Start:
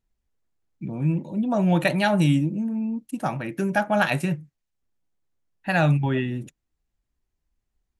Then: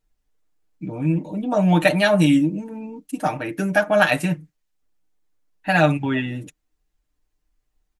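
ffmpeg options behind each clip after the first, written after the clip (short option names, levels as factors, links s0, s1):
-af "equalizer=f=140:w=4.4:g=-14,aecho=1:1:6.6:0.77,volume=1.41"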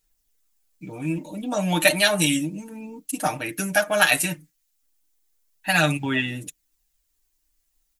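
-af "aphaser=in_gain=1:out_gain=1:delay=3.7:decay=0.29:speed=0.32:type=sinusoidal,crystalizer=i=7:c=0,volume=0.473"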